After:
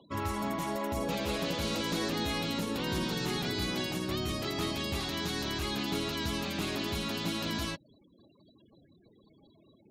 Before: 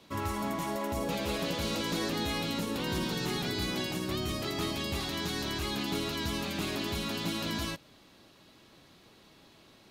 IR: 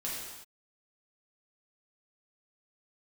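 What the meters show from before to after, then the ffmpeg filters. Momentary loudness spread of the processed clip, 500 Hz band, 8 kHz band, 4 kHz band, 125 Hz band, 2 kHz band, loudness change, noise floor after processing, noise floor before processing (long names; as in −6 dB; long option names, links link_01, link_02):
2 LU, 0.0 dB, −0.5 dB, 0.0 dB, 0.0 dB, 0.0 dB, 0.0 dB, −63 dBFS, −59 dBFS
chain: -af "acompressor=mode=upward:threshold=-55dB:ratio=2.5,afftfilt=real='re*gte(hypot(re,im),0.00316)':imag='im*gte(hypot(re,im),0.00316)':win_size=1024:overlap=0.75"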